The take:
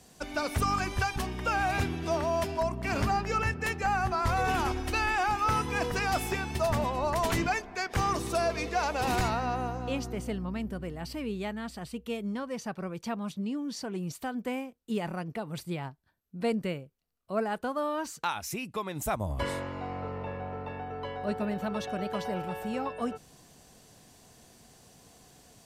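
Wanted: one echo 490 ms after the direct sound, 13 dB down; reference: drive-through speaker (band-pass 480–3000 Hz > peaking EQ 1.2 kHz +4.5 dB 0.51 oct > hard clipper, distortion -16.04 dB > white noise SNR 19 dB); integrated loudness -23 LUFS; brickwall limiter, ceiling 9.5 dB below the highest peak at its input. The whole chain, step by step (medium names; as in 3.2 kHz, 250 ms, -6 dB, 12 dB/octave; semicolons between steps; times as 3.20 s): peak limiter -27.5 dBFS; band-pass 480–3000 Hz; peaking EQ 1.2 kHz +4.5 dB 0.51 oct; delay 490 ms -13 dB; hard clipper -31.5 dBFS; white noise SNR 19 dB; trim +16 dB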